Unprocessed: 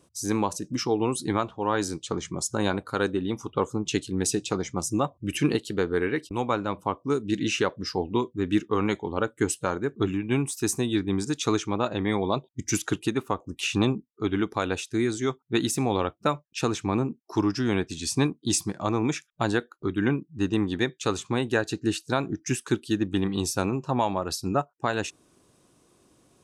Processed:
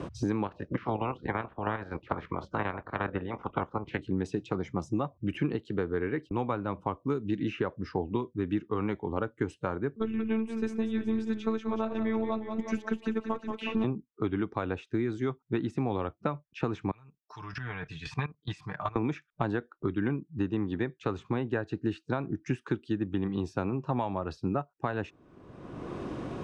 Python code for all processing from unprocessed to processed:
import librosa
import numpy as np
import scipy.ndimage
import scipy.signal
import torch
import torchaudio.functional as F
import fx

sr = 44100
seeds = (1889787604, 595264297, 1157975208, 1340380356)

y = fx.spec_clip(x, sr, under_db=23, at=(0.44, 3.98), fade=0.02)
y = fx.lowpass(y, sr, hz=2200.0, slope=12, at=(0.44, 3.98), fade=0.02)
y = fx.level_steps(y, sr, step_db=9, at=(0.44, 3.98), fade=0.02)
y = fx.chain(y, sr, fx.robotise(hz=222.0),
    fx.echo_warbled(ms=183, feedback_pct=58, rate_hz=2.8, cents=59, wet_db=-10.5), at=(9.96, 13.84))
y = fx.chain(y, sr, fx.tone_stack(knobs='10-0-10'),
    fx.comb(ms=6.7, depth=0.6),
    fx.level_steps(step_db=18), at=(16.91, 18.96))
y = scipy.signal.sosfilt(scipy.signal.butter(2, 2100.0, 'lowpass', fs=sr, output='sos'), y)
y = fx.low_shelf(y, sr, hz=180.0, db=4.5)
y = fx.band_squash(y, sr, depth_pct=100)
y = y * librosa.db_to_amplitude(-6.0)